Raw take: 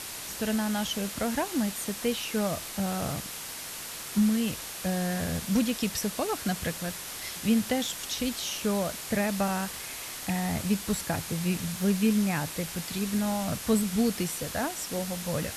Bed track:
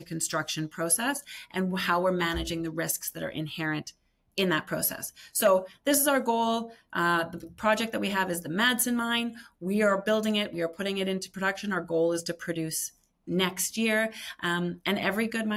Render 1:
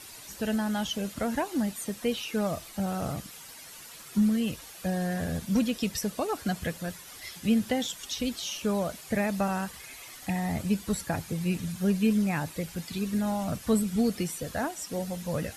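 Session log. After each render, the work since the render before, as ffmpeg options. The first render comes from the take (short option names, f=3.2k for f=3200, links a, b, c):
-af "afftdn=nr=11:nf=-39"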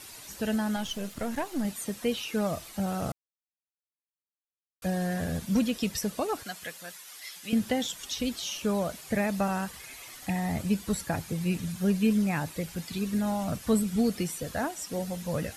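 -filter_complex "[0:a]asettb=1/sr,asplit=3[a][b][c];[a]atrim=end=0.764[d];[b]atrim=start=0.76:end=1.65,asetpts=PTS-STARTPTS,afade=t=in:d=0.004:c=qsin,afade=t=out:st=0.886:d=0.004:c=qsin,aeval=exprs='if(lt(val(0),0),0.447*val(0),val(0))':c=same[e];[c]atrim=start=1.646[f];[d][e]acrossfade=d=0.004:c1=hsin:c2=qsin[g];[g][f]acrossfade=d=0.004:c1=qsin:c2=hsin,asettb=1/sr,asplit=3[h][i][j];[h]atrim=end=6.434[k];[i]atrim=start=6.43:end=7.53,asetpts=PTS-STARTPTS,afade=t=in:d=0.004:c=qsin,afade=t=out:st=1.096:d=0.004:c=qsin,highpass=f=1.3k:p=1[l];[j]atrim=start=7.526[m];[k][l]acrossfade=d=0.004:c1=hsin:c2=qsin[n];[n][m]acrossfade=d=0.004:c1=qsin:c2=hsin,asplit=3[o][p][q];[o]atrim=end=3.12,asetpts=PTS-STARTPTS,afade=t=out:st=3.116:d=0.004:c=hsin[r];[p]atrim=start=3.12:end=4.82,asetpts=PTS-STARTPTS,volume=0[s];[q]atrim=start=4.82,asetpts=PTS-STARTPTS,afade=t=in:d=0.004:c=hsin[t];[r][s][t]concat=n=3:v=0:a=1"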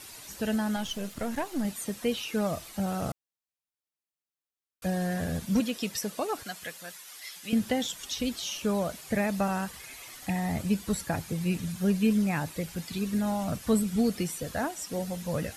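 -filter_complex "[0:a]asettb=1/sr,asplit=3[a][b][c];[a]atrim=end=5.604[d];[b]atrim=start=5.6:end=6.38,asetpts=PTS-STARTPTS,afade=t=in:d=0.004:c=qsin,afade=t=out:st=0.776:d=0.004:c=qsin,highpass=f=260:p=1[e];[c]atrim=start=6.376[f];[d][e]acrossfade=d=0.004:c1=hsin:c2=qsin[g];[g][f]acrossfade=d=0.004:c1=qsin:c2=hsin"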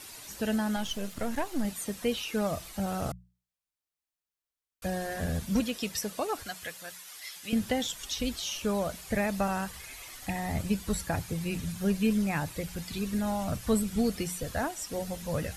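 -af "asubboost=boost=3:cutoff=93,bandreject=f=60:t=h:w=6,bandreject=f=120:t=h:w=6,bandreject=f=180:t=h:w=6"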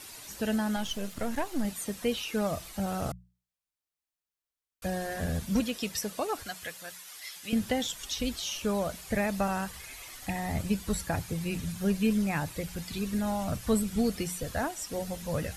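-af anull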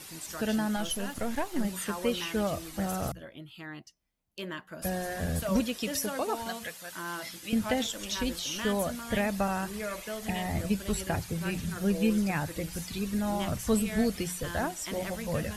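-filter_complex "[1:a]volume=-12.5dB[a];[0:a][a]amix=inputs=2:normalize=0"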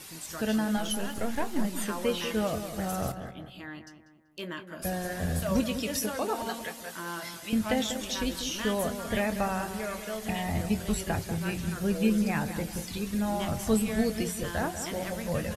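-filter_complex "[0:a]asplit=2[a][b];[b]adelay=23,volume=-12dB[c];[a][c]amix=inputs=2:normalize=0,asplit=2[d][e];[e]adelay=192,lowpass=f=2k:p=1,volume=-9dB,asplit=2[f][g];[g]adelay=192,lowpass=f=2k:p=1,volume=0.46,asplit=2[h][i];[i]adelay=192,lowpass=f=2k:p=1,volume=0.46,asplit=2[j][k];[k]adelay=192,lowpass=f=2k:p=1,volume=0.46,asplit=2[l][m];[m]adelay=192,lowpass=f=2k:p=1,volume=0.46[n];[d][f][h][j][l][n]amix=inputs=6:normalize=0"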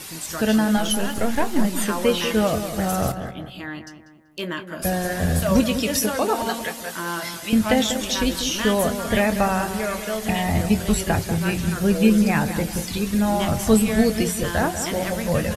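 -af "volume=9dB"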